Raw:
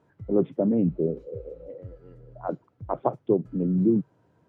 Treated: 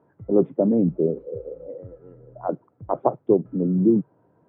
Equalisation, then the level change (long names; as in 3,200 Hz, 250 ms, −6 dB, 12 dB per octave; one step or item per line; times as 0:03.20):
high-pass filter 200 Hz 6 dB per octave
low-pass filter 1,100 Hz 12 dB per octave
+5.5 dB